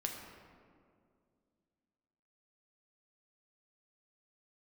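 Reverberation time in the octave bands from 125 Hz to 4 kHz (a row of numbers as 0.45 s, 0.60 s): 2.7 s, 2.9 s, 2.5 s, 2.0 s, 1.5 s, 1.1 s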